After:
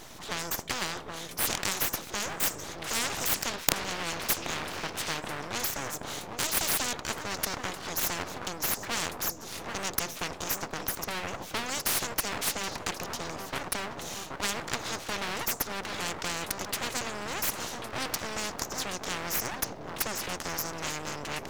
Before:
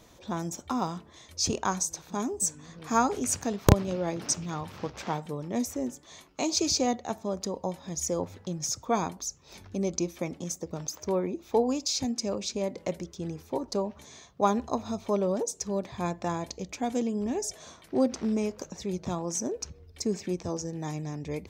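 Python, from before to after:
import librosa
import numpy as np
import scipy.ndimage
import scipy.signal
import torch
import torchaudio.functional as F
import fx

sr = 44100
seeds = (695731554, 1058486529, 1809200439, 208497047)

y = fx.echo_tape(x, sr, ms=776, feedback_pct=65, wet_db=-13.5, lp_hz=1300.0, drive_db=8.0, wow_cents=17)
y = np.abs(y)
y = fx.spectral_comp(y, sr, ratio=4.0)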